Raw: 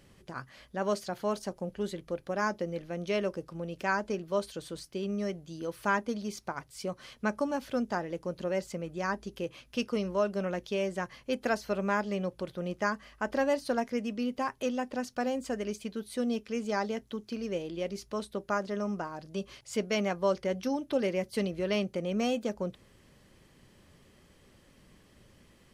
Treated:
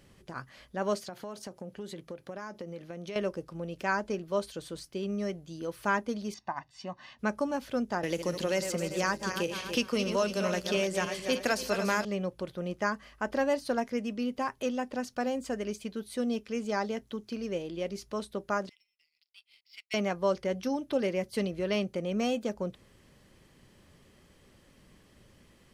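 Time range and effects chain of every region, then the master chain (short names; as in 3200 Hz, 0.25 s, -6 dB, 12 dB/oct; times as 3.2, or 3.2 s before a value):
1–3.16 HPF 97 Hz + compressor, threshold -36 dBFS
6.34–7.19 HPF 370 Hz 6 dB/oct + air absorption 160 m + comb 1.1 ms, depth 96%
8.03–12.05 regenerating reverse delay 0.144 s, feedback 61%, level -8.5 dB + high shelf 2500 Hz +11.5 dB + three-band squash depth 70%
18.69–19.94 brick-wall FIR band-pass 1900–5600 Hz + power-law curve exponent 1.4
whole clip: dry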